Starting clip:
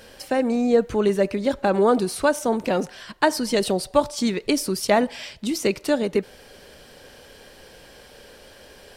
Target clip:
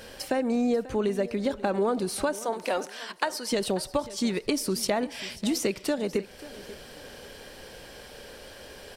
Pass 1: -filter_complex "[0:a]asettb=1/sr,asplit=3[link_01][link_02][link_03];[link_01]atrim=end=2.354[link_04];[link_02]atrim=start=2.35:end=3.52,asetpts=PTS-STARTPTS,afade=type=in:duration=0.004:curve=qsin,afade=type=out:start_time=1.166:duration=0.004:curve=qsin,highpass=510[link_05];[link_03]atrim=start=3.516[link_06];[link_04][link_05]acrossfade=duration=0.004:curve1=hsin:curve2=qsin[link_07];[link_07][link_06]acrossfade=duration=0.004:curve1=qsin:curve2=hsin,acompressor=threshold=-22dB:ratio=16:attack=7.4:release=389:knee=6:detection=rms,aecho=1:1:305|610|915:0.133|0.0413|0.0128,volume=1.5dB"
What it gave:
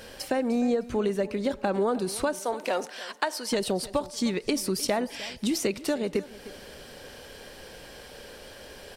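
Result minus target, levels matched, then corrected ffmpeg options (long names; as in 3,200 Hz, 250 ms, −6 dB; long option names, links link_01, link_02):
echo 234 ms early
-filter_complex "[0:a]asettb=1/sr,asplit=3[link_01][link_02][link_03];[link_01]atrim=end=2.354[link_04];[link_02]atrim=start=2.35:end=3.52,asetpts=PTS-STARTPTS,afade=type=in:duration=0.004:curve=qsin,afade=type=out:start_time=1.166:duration=0.004:curve=qsin,highpass=510[link_05];[link_03]atrim=start=3.516[link_06];[link_04][link_05]acrossfade=duration=0.004:curve1=hsin:curve2=qsin[link_07];[link_07][link_06]acrossfade=duration=0.004:curve1=qsin:curve2=hsin,acompressor=threshold=-22dB:ratio=16:attack=7.4:release=389:knee=6:detection=rms,aecho=1:1:539|1078|1617:0.133|0.0413|0.0128,volume=1.5dB"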